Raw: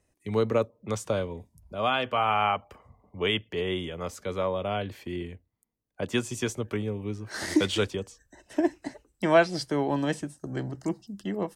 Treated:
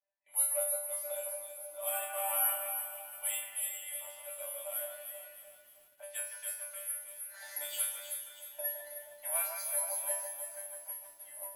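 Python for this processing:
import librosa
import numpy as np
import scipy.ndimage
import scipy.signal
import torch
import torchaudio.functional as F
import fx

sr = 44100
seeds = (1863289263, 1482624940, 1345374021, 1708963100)

y = fx.high_shelf(x, sr, hz=11000.0, db=-11.0)
y = fx.notch(y, sr, hz=1200.0, q=6.5)
y = (np.kron(scipy.signal.resample_poly(y, 1, 4), np.eye(4)[0]) * 4)[:len(y)]
y = fx.env_lowpass(y, sr, base_hz=1800.0, full_db=-19.5)
y = scipy.signal.sosfilt(scipy.signal.ellip(4, 1.0, 40, 600.0, 'highpass', fs=sr, output='sos'), y)
y = fx.resonator_bank(y, sr, root=55, chord='fifth', decay_s=0.49)
y = fx.echo_alternate(y, sr, ms=157, hz=2400.0, feedback_pct=65, wet_db=-4.0)
y = fx.echo_crushed(y, sr, ms=329, feedback_pct=55, bits=10, wet_db=-11.0)
y = y * 10.0 ** (4.0 / 20.0)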